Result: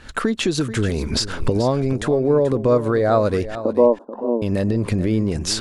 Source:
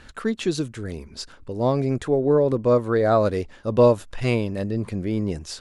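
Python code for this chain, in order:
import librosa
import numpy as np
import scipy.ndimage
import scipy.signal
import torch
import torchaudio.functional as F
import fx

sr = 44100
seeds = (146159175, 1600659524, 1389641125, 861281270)

p1 = fx.recorder_agc(x, sr, target_db=-14.0, rise_db_per_s=70.0, max_gain_db=30)
p2 = fx.ellip_bandpass(p1, sr, low_hz=240.0, high_hz=1000.0, order=3, stop_db=40, at=(3.55, 4.42))
p3 = p2 + fx.echo_single(p2, sr, ms=434, db=-13.5, dry=0)
y = F.gain(torch.from_numpy(p3), 1.5).numpy()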